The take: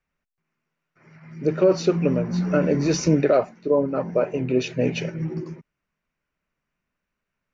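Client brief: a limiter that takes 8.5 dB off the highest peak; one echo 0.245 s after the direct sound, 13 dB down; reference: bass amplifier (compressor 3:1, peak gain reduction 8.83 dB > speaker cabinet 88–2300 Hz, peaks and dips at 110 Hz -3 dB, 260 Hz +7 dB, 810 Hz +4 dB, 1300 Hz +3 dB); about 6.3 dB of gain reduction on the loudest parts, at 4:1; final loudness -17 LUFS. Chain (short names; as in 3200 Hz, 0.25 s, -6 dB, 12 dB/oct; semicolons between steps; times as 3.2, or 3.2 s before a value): compressor 4:1, threshold -21 dBFS; limiter -20 dBFS; echo 0.245 s -13 dB; compressor 3:1, threshold -35 dBFS; speaker cabinet 88–2300 Hz, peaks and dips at 110 Hz -3 dB, 260 Hz +7 dB, 810 Hz +4 dB, 1300 Hz +3 dB; gain +18.5 dB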